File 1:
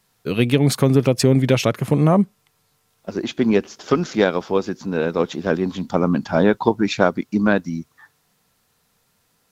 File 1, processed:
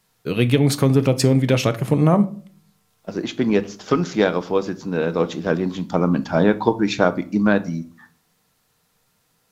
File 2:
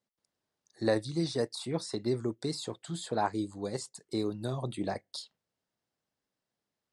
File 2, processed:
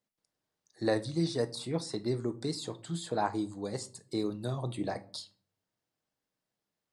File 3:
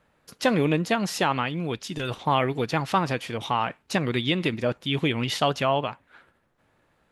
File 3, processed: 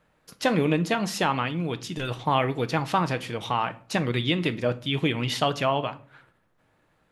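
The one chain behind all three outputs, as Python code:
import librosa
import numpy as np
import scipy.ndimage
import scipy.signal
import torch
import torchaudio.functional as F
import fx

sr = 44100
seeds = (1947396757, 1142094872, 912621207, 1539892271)

y = fx.room_shoebox(x, sr, seeds[0], volume_m3=400.0, walls='furnished', distance_m=0.53)
y = y * librosa.db_to_amplitude(-1.0)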